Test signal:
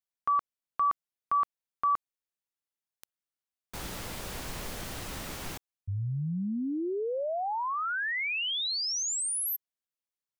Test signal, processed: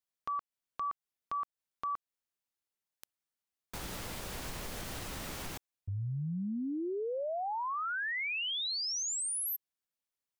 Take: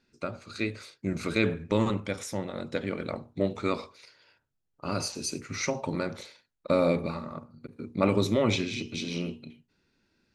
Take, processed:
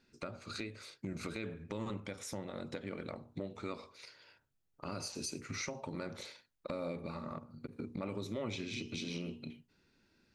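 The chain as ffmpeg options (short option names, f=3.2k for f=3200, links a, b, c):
-af "acompressor=threshold=-33dB:ratio=6:attack=0.59:release=534:knee=1:detection=peak"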